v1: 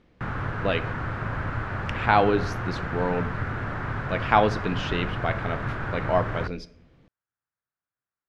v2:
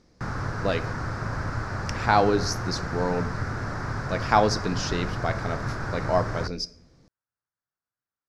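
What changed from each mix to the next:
master: add high shelf with overshoot 4,000 Hz +9.5 dB, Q 3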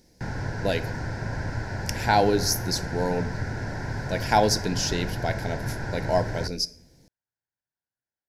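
speech: remove high-frequency loss of the air 100 metres
master: add Butterworth band-reject 1,200 Hz, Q 2.7

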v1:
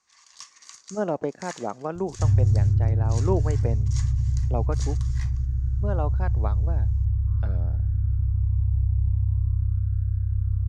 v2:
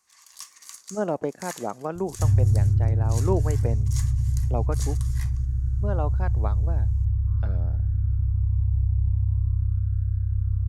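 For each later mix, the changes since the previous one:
first sound: remove low-pass filter 6,800 Hz 24 dB per octave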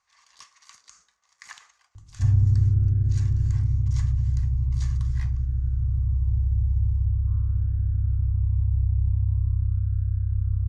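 speech: muted
master: add high-frequency loss of the air 140 metres

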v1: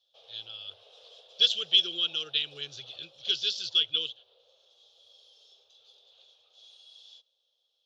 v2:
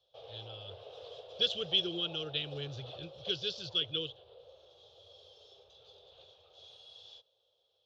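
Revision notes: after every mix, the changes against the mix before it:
background +7.0 dB
master: add spectral tilt −4.5 dB per octave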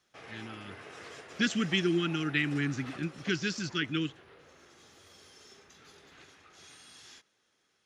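background +3.0 dB
master: remove drawn EQ curve 110 Hz 0 dB, 260 Hz −28 dB, 520 Hz +12 dB, 2,000 Hz −25 dB, 3,400 Hz +9 dB, 8,200 Hz −24 dB

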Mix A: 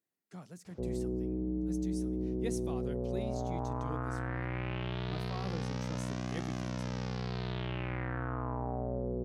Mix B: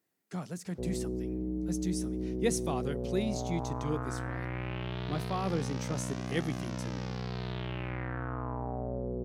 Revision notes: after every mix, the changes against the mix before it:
speech +10.0 dB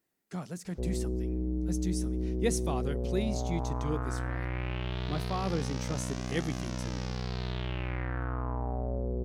background: remove low-pass filter 3,400 Hz 6 dB per octave
master: remove high-pass filter 77 Hz 24 dB per octave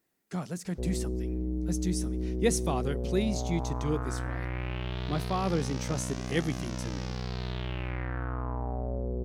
speech +3.5 dB

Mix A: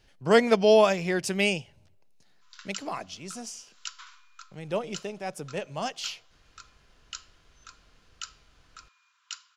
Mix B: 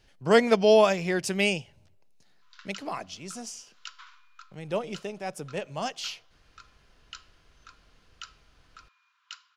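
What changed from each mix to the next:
background: add high-frequency loss of the air 140 metres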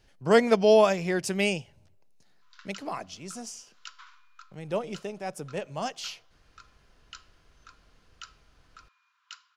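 master: add parametric band 3,100 Hz −3 dB 1.5 octaves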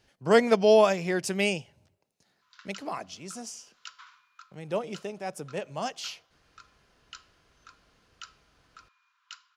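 master: add high-pass filter 110 Hz 6 dB per octave

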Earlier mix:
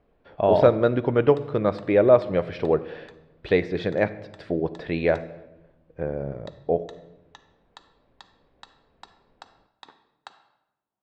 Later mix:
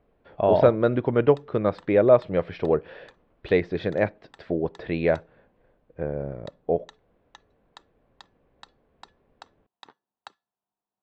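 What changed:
speech: add high-frequency loss of the air 99 metres
reverb: off

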